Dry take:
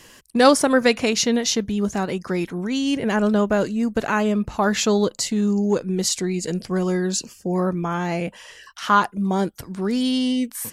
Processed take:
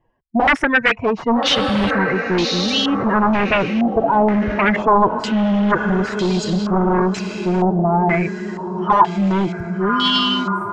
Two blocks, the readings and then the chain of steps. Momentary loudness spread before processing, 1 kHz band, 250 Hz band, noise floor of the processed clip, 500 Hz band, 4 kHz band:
8 LU, +7.5 dB, +3.0 dB, -33 dBFS, +2.5 dB, +6.5 dB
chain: expander on every frequency bin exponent 1.5; spectral noise reduction 10 dB; on a send: echo that smears into a reverb 1225 ms, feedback 47%, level -11 dB; on the sum: sine folder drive 17 dB, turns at -3.5 dBFS; in parallel at -0.5 dB: peak limiter -12 dBFS, peak gain reduction 10.5 dB; on the sum: step-sequenced low-pass 2.1 Hz 780–4000 Hz; trim -13 dB

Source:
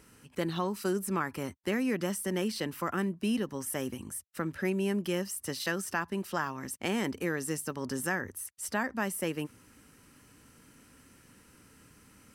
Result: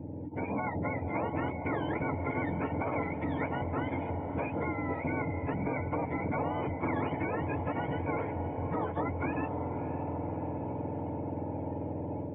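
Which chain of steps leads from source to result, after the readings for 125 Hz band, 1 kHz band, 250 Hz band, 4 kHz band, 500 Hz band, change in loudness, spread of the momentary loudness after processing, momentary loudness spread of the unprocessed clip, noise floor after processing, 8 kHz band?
+5.5 dB, +4.0 dB, -0.5 dB, -15.0 dB, +0.5 dB, -1.0 dB, 4 LU, 6 LU, -39 dBFS, under -40 dB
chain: spectrum inverted on a logarithmic axis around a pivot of 890 Hz; steep low-pass 3.1 kHz 72 dB/octave; in parallel at +0.5 dB: compression, threshold -40 dBFS, peak gain reduction 16 dB; on the sum: peak limiter -27 dBFS, peak gain reduction 9.5 dB; level rider gain up to 15 dB; cascade formant filter u; comb of notches 390 Hz; echo that smears into a reverb 588 ms, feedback 57%, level -15 dB; spectrum-flattening compressor 4:1; trim -2 dB

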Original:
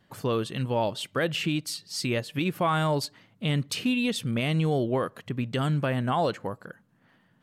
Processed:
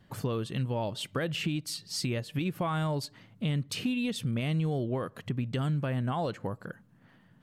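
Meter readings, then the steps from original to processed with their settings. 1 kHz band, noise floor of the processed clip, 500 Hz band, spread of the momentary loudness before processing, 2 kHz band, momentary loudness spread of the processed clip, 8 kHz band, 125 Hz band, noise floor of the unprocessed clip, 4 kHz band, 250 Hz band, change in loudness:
-7.5 dB, -61 dBFS, -6.5 dB, 7 LU, -6.5 dB, 6 LU, -3.5 dB, -2.0 dB, -65 dBFS, -5.0 dB, -3.5 dB, -4.0 dB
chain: bass shelf 180 Hz +9.5 dB; compression 2.5:1, threshold -31 dBFS, peak gain reduction 9.5 dB

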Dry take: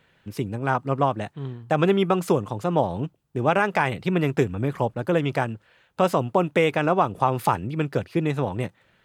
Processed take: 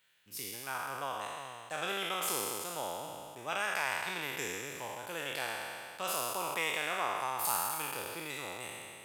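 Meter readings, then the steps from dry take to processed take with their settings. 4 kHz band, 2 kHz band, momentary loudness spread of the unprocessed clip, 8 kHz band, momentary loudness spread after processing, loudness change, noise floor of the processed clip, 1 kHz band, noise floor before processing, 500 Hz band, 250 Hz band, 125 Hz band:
-1.0 dB, -6.0 dB, 11 LU, +8.0 dB, 10 LU, -12.0 dB, -50 dBFS, -11.5 dB, -63 dBFS, -17.5 dB, -23.5 dB, -27.5 dB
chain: spectral sustain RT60 2.43 s; pre-emphasis filter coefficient 0.97; trim -1 dB

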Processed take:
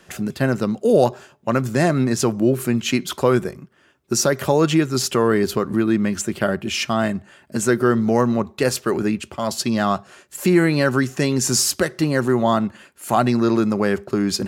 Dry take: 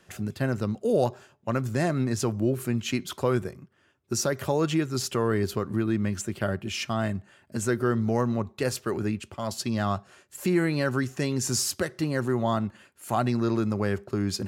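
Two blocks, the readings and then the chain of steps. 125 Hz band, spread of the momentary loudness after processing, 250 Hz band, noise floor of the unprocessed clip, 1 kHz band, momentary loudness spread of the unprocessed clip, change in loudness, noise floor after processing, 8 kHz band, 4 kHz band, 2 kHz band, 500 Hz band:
+4.5 dB, 7 LU, +8.0 dB, -64 dBFS, +8.5 dB, 6 LU, +8.0 dB, -55 dBFS, +8.5 dB, +8.5 dB, +8.5 dB, +8.5 dB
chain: peaking EQ 100 Hz -15 dB 0.31 oct; trim +8.5 dB

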